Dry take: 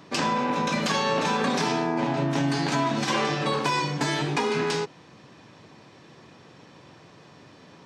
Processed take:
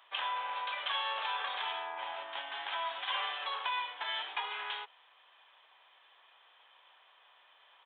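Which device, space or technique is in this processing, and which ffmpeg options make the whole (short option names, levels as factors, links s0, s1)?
musical greeting card: -af "aresample=8000,aresample=44100,highpass=f=770:w=0.5412,highpass=f=770:w=1.3066,equalizer=f=3200:t=o:w=0.22:g=10,volume=0.376"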